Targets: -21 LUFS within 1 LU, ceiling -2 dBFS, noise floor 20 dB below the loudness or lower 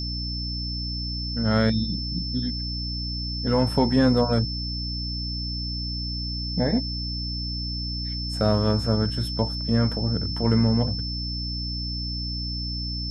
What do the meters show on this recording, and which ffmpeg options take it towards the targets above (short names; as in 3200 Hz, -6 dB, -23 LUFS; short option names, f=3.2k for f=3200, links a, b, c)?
hum 60 Hz; harmonics up to 300 Hz; hum level -29 dBFS; steady tone 5300 Hz; tone level -31 dBFS; loudness -25.5 LUFS; peak -7.0 dBFS; loudness target -21.0 LUFS
-> -af "bandreject=f=60:t=h:w=4,bandreject=f=120:t=h:w=4,bandreject=f=180:t=h:w=4,bandreject=f=240:t=h:w=4,bandreject=f=300:t=h:w=4"
-af "bandreject=f=5.3k:w=30"
-af "volume=4.5dB"